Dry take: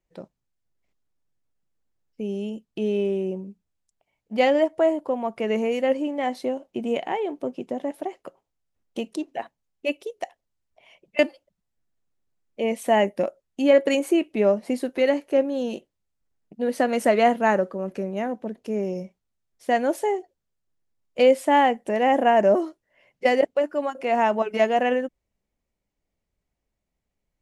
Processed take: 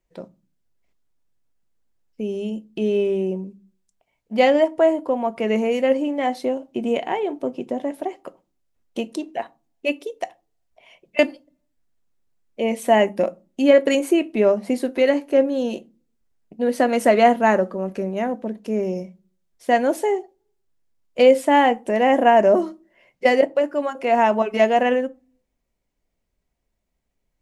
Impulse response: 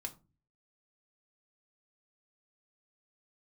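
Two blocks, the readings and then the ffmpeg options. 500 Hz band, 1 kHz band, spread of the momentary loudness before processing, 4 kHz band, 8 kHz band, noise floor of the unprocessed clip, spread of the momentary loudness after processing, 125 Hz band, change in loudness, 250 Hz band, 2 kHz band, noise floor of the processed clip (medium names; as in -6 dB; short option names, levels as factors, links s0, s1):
+3.5 dB, +3.0 dB, 15 LU, +3.0 dB, +3.5 dB, -81 dBFS, 14 LU, no reading, +3.5 dB, +3.5 dB, +3.0 dB, -75 dBFS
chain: -filter_complex "[0:a]asplit=2[s0][s1];[1:a]atrim=start_sample=2205[s2];[s1][s2]afir=irnorm=-1:irlink=0,volume=0.708[s3];[s0][s3]amix=inputs=2:normalize=0"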